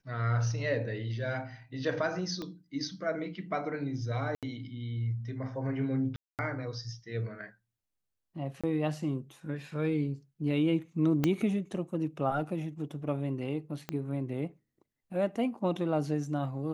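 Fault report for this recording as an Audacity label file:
2.420000	2.420000	pop -25 dBFS
4.350000	4.430000	dropout 77 ms
6.160000	6.390000	dropout 228 ms
8.610000	8.640000	dropout 26 ms
11.240000	11.240000	pop -14 dBFS
13.890000	13.890000	pop -20 dBFS

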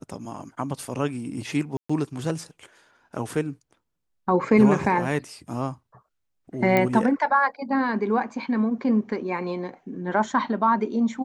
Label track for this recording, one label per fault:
1.770000	1.900000	dropout 125 ms
6.770000	6.770000	pop -9 dBFS

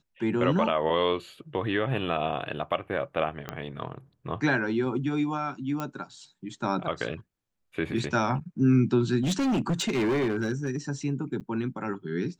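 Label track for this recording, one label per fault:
3.490000	3.490000	pop -18 dBFS
5.800000	5.800000	pop -18 dBFS
9.230000	10.770000	clipped -22.5 dBFS
11.400000	11.410000	dropout 8.1 ms

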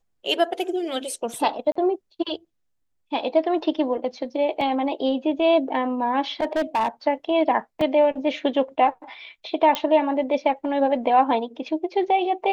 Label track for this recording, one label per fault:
1.720000	1.750000	dropout 35 ms
4.610000	4.610000	dropout 2.9 ms
6.400000	6.880000	clipped -18 dBFS
7.810000	7.810000	dropout 3.2 ms
9.750000	9.750000	pop -8 dBFS

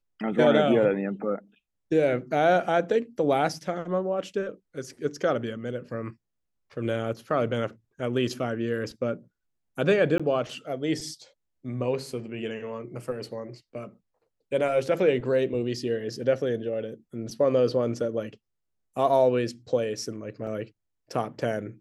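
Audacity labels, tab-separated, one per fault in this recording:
10.180000	10.200000	dropout 16 ms
20.470000	20.470000	dropout 2.5 ms

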